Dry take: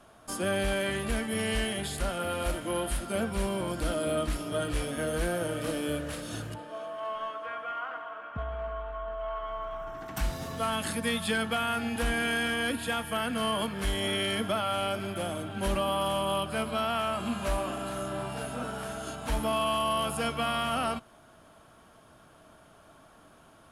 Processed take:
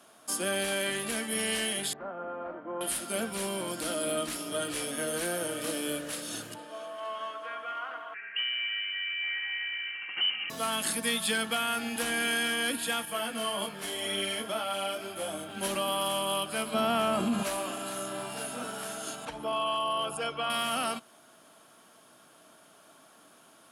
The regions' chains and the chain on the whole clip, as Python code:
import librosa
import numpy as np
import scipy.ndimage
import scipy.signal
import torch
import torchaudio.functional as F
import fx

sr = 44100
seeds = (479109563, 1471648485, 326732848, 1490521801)

y = fx.chain(x, sr, fx.lowpass(hz=1200.0, slope=24),
    fx.tilt_eq(slope=2.5), at=(1.93, 2.81))
y = fx.chain(y, sr, fx.overload_stage(gain_db=28.5),
    fx.freq_invert(carrier_hz=3000), at=(8.14, 10.5))
y = fx.chain(y, sr, fx.peak_eq(hz=680.0, db=4.0, octaves=1.3),
    fx.detune_double(cents=15), at=(13.05, 15.49))
y = fx.chain(y, sr, fx.tilt_shelf(db=6.5, hz=830.0),
    fx.env_flatten(amount_pct=70), at=(16.74, 17.43))
y = fx.chain(y, sr, fx.envelope_sharpen(power=1.5),
    fx.lowpass(hz=7300.0, slope=12),
    fx.peak_eq(hz=230.0, db=-11.5, octaves=0.33), at=(19.25, 20.5))
y = scipy.signal.sosfilt(scipy.signal.cheby1(2, 1.0, 230.0, 'highpass', fs=sr, output='sos'), y)
y = fx.high_shelf(y, sr, hz=2700.0, db=11.0)
y = F.gain(torch.from_numpy(y), -2.5).numpy()